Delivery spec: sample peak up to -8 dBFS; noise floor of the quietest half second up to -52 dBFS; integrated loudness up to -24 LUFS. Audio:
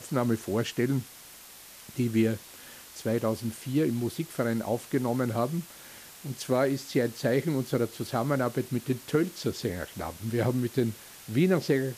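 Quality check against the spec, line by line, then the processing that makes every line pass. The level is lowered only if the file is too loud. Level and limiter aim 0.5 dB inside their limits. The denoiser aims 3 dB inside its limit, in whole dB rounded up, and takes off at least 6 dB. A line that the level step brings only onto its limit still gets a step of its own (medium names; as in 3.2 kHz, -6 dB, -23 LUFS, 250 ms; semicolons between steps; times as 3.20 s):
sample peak -12.5 dBFS: pass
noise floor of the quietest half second -49 dBFS: fail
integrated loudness -29.0 LUFS: pass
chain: noise reduction 6 dB, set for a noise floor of -49 dBFS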